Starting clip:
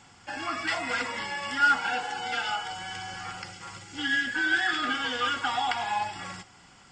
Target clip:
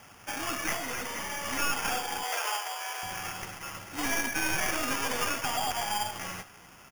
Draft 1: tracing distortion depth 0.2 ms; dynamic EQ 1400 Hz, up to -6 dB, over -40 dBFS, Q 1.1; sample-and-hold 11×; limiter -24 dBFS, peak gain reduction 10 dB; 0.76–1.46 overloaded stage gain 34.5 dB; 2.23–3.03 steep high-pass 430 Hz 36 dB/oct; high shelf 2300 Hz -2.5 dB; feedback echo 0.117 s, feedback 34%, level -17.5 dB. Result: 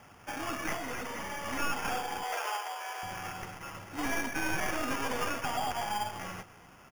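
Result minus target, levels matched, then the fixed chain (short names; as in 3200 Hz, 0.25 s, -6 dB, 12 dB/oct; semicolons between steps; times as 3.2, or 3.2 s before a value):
echo 43 ms late; 4000 Hz band -2.5 dB
tracing distortion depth 0.2 ms; dynamic EQ 1400 Hz, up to -6 dB, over -40 dBFS, Q 1.1; sample-and-hold 11×; limiter -24 dBFS, peak gain reduction 10 dB; 0.76–1.46 overloaded stage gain 34.5 dB; 2.23–3.03 steep high-pass 430 Hz 36 dB/oct; high shelf 2300 Hz +6.5 dB; feedback echo 74 ms, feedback 34%, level -17.5 dB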